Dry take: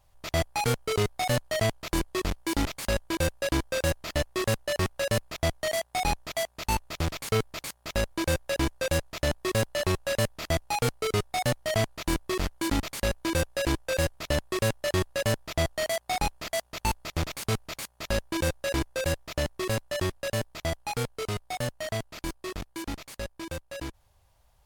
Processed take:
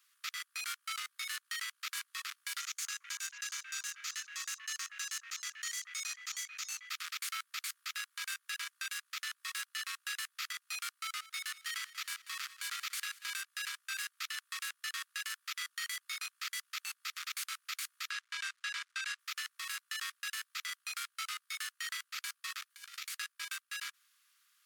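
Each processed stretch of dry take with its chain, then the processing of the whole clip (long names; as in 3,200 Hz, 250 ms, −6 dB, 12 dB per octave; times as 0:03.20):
0:02.60–0:06.90: parametric band 6,500 Hz +12.5 dB 0.45 octaves + echo through a band-pass that steps 220 ms, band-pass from 770 Hz, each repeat 1.4 octaves, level −9 dB
0:11.00–0:13.45: hum removal 46.74 Hz, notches 19 + repeating echo 188 ms, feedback 47%, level −21 dB
0:18.10–0:19.19: floating-point word with a short mantissa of 2 bits + high-frequency loss of the air 74 metres
0:22.70–0:23.10: high-pass filter 1,400 Hz 6 dB per octave + compressor whose output falls as the input rises −48 dBFS, ratio −0.5 + double-tracking delay 15 ms −11 dB
whole clip: Butterworth high-pass 1,200 Hz 72 dB per octave; downward compressor, threshold −37 dBFS; brickwall limiter −31.5 dBFS; level +3 dB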